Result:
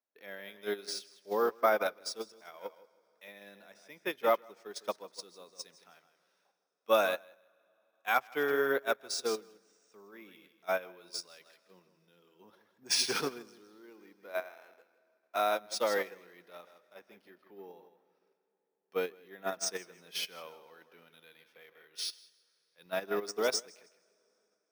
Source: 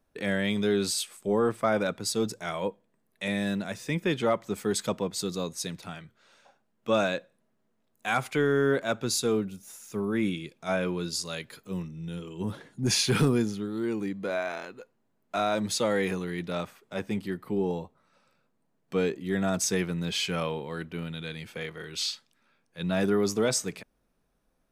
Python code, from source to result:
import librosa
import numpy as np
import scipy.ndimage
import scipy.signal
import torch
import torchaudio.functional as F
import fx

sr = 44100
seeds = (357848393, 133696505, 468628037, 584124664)

p1 = np.repeat(scipy.signal.resample_poly(x, 1, 3), 3)[:len(x)]
p2 = scipy.signal.sosfilt(scipy.signal.butter(2, 510.0, 'highpass', fs=sr, output='sos'), p1)
p3 = fx.peak_eq(p2, sr, hz=5500.0, db=10.0, octaves=0.25)
p4 = p3 + fx.echo_feedback(p3, sr, ms=159, feedback_pct=27, wet_db=-10, dry=0)
p5 = fx.rev_plate(p4, sr, seeds[0], rt60_s=4.2, hf_ratio=0.85, predelay_ms=0, drr_db=18.0)
p6 = fx.level_steps(p5, sr, step_db=15)
p7 = p5 + (p6 * librosa.db_to_amplitude(-2.0))
p8 = fx.high_shelf(p7, sr, hz=3400.0, db=-5.0)
y = fx.upward_expand(p8, sr, threshold_db=-34.0, expansion=2.5)